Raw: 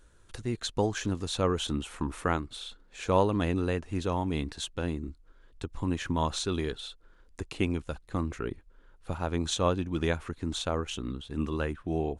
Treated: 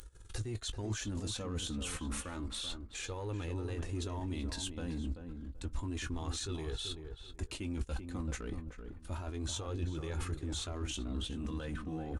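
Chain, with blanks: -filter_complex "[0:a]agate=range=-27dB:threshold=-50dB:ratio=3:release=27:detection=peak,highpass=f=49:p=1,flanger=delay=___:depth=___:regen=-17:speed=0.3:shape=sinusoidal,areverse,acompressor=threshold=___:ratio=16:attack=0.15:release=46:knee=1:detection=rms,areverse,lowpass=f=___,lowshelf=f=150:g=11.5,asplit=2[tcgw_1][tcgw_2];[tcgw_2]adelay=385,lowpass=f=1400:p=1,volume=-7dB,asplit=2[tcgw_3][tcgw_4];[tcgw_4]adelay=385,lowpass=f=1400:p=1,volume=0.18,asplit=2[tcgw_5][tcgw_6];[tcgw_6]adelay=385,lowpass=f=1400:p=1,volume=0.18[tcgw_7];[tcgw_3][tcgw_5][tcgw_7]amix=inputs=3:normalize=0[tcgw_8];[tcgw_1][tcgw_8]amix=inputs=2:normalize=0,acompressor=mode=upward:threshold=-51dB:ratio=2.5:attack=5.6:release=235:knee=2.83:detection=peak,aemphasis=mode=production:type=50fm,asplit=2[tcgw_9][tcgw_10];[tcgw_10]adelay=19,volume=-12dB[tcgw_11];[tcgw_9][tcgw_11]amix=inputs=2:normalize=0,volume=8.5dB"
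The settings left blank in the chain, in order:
2.3, 1.7, -46dB, 8900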